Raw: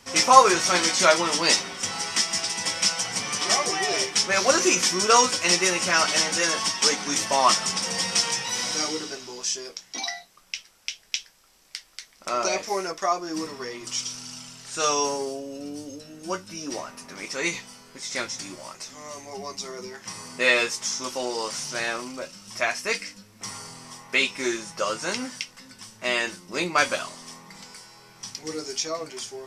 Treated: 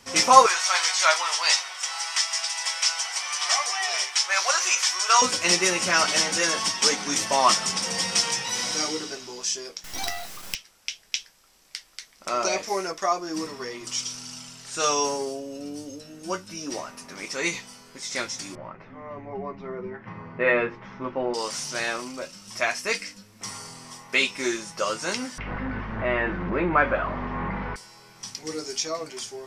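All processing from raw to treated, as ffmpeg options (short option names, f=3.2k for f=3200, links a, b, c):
-filter_complex "[0:a]asettb=1/sr,asplit=3[a][b][c];[a]atrim=end=0.464[d];[b]atrim=start=0.46:end=5.22,asetpts=PTS-STARTPTS,afade=t=in:d=0.004:c=qsin,afade=t=out:st=4.756:d=0.004:c=qsin,highpass=f=750:w=0.5412,highpass=f=750:w=1.3066,acrossover=split=8500[e][f];[f]acompressor=threshold=-40dB:ratio=4:attack=1:release=60[g];[e][g]amix=inputs=2:normalize=0[h];[c]atrim=start=5.216[i];[d][h]acrossfade=d=0.004:c1=hsin:c2=qsin[j];[j][i]acrossfade=d=0.004:c1=qsin:c2=hsin,asettb=1/sr,asplit=3[k][l][m];[k]atrim=end=9.844[n];[l]atrim=start=9.84:end=10.55,asetpts=PTS-STARTPTS,afade=t=in:d=0.004:c=qsin,afade=t=out:st=0.706:d=0.004:c=qsin,aeval=exprs='val(0)+0.5*0.0355*sgn(val(0))':c=same,equalizer=f=740:t=o:w=0.37:g=5,acrusher=bits=4:dc=4:mix=0:aa=0.000001[o];[m]atrim=start=10.546[p];[n][o]acrossfade=d=0.004:c1=hsin:c2=qsin[q];[q][p]acrossfade=d=0.004:c1=qsin:c2=hsin,asettb=1/sr,asplit=3[r][s][t];[r]atrim=end=18.554[u];[s]atrim=start=18.55:end=21.34,asetpts=PTS-STARTPTS,afade=t=in:d=0.004:c=qsin,afade=t=out:st=2.786:d=0.004:c=qsin,lowpass=f=2.1k:w=0.5412,lowpass=f=2.1k:w=1.3066,lowshelf=f=260:g=11.5,bandreject=f=50:t=h:w=6,bandreject=f=100:t=h:w=6,bandreject=f=150:t=h:w=6,bandreject=f=200:t=h:w=6,bandreject=f=250:t=h:w=6,bandreject=f=300:t=h:w=6,bandreject=f=350:t=h:w=6[v];[t]atrim=start=21.336[w];[u][v]acrossfade=d=0.004:c1=hsin:c2=qsin[x];[x][w]acrossfade=d=0.004:c1=qsin:c2=hsin,asettb=1/sr,asplit=3[y][z][aa];[y]atrim=end=25.384[ab];[z]atrim=start=25.38:end=27.76,asetpts=PTS-STARTPTS,afade=t=in:d=0.004:c=qsin,afade=t=out:st=2.376:d=0.004:c=qsin,aeval=exprs='val(0)+0.5*0.0708*sgn(val(0))':c=same,aeval=exprs='val(0)+0.0178*(sin(2*PI*50*n/s)+sin(2*PI*2*50*n/s)/2+sin(2*PI*3*50*n/s)/3+sin(2*PI*4*50*n/s)/4+sin(2*PI*5*50*n/s)/5)':c=same,lowpass=f=1.9k:w=0.5412,lowpass=f=1.9k:w=1.3066[ac];[aa]atrim=start=27.756[ad];[ab][ac]acrossfade=d=0.004:c1=hsin:c2=qsin[ae];[ae][ad]acrossfade=d=0.004:c1=qsin:c2=hsin"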